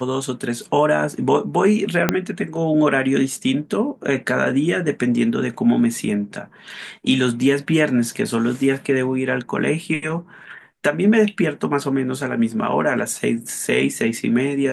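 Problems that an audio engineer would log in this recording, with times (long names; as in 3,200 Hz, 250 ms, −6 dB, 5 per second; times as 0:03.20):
0:02.09: click −1 dBFS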